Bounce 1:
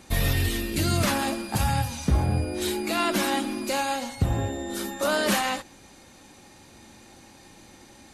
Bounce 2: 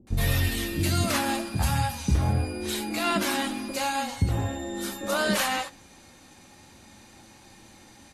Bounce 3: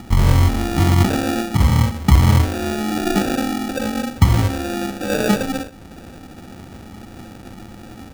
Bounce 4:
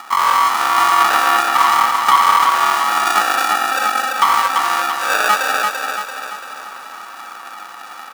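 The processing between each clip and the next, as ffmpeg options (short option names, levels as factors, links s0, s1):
-filter_complex "[0:a]flanger=delay=9:depth=3.3:regen=-54:speed=0.4:shape=sinusoidal,acrossover=split=430[s0][s1];[s1]adelay=70[s2];[s0][s2]amix=inputs=2:normalize=0,volume=1.5"
-filter_complex "[0:a]tiltshelf=f=970:g=8,asplit=2[s0][s1];[s1]acompressor=mode=upward:threshold=0.0562:ratio=2.5,volume=0.75[s2];[s0][s2]amix=inputs=2:normalize=0,acrusher=samples=42:mix=1:aa=0.000001,volume=0.891"
-filter_complex "[0:a]highpass=f=1100:t=q:w=6,asoftclip=type=hard:threshold=0.282,asplit=2[s0][s1];[s1]aecho=0:1:339|678|1017|1356|1695|2034|2373:0.631|0.322|0.164|0.0837|0.0427|0.0218|0.0111[s2];[s0][s2]amix=inputs=2:normalize=0,volume=1.78"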